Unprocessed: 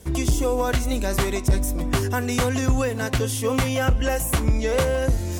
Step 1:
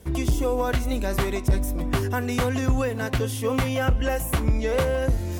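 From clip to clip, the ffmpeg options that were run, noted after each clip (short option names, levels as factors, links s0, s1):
-af "equalizer=f=7300:t=o:w=1.4:g=-6.5,volume=0.841"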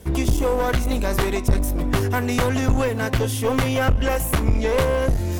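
-af "aeval=exprs='clip(val(0),-1,0.0562)':c=same,volume=1.78"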